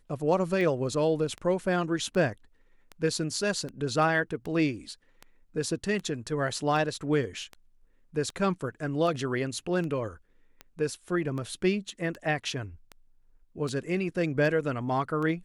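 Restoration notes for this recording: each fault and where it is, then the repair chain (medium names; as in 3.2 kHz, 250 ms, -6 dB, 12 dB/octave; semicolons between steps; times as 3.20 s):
tick 78 rpm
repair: de-click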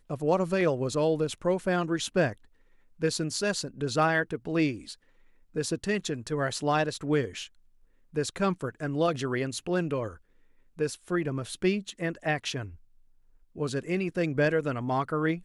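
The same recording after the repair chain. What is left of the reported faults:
nothing left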